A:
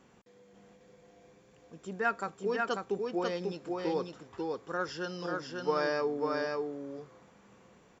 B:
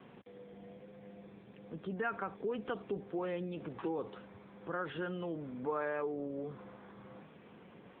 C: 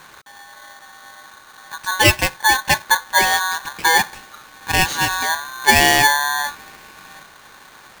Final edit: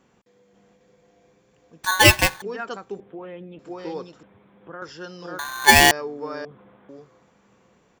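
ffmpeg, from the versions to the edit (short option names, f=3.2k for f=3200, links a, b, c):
-filter_complex "[2:a]asplit=2[a][b];[1:a]asplit=3[c][d][e];[0:a]asplit=6[f][g][h][i][j][k];[f]atrim=end=1.842[l];[a]atrim=start=1.838:end=2.422[m];[g]atrim=start=2.418:end=3.002[n];[c]atrim=start=2.998:end=3.592[o];[h]atrim=start=3.588:end=4.232[p];[d]atrim=start=4.228:end=4.822[q];[i]atrim=start=4.818:end=5.392[r];[b]atrim=start=5.388:end=5.912[s];[j]atrim=start=5.908:end=6.452[t];[e]atrim=start=6.448:end=6.892[u];[k]atrim=start=6.888[v];[l][m]acrossfade=d=0.004:c1=hsin:c2=hsin[w];[w][n]acrossfade=d=0.004:c1=hsin:c2=hsin[x];[x][o]acrossfade=d=0.004:c1=hsin:c2=hsin[y];[y][p]acrossfade=d=0.004:c1=hsin:c2=hsin[z];[z][q]acrossfade=d=0.004:c1=hsin:c2=hsin[aa];[aa][r]acrossfade=d=0.004:c1=hsin:c2=hsin[ab];[ab][s]acrossfade=d=0.004:c1=hsin:c2=hsin[ac];[ac][t]acrossfade=d=0.004:c1=hsin:c2=hsin[ad];[ad][u]acrossfade=d=0.004:c1=hsin:c2=hsin[ae];[ae][v]acrossfade=d=0.004:c1=hsin:c2=hsin"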